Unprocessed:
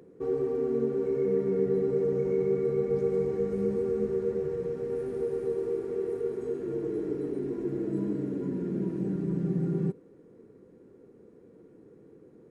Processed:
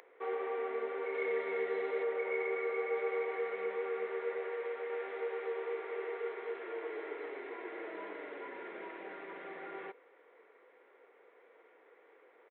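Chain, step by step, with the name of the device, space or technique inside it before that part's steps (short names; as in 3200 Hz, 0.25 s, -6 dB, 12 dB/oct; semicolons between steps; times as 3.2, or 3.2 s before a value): 1.14–2.03 tone controls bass +5 dB, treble +15 dB; musical greeting card (downsampling 8000 Hz; HPF 700 Hz 24 dB/oct; bell 2100 Hz +10.5 dB 0.29 oct); gain +8 dB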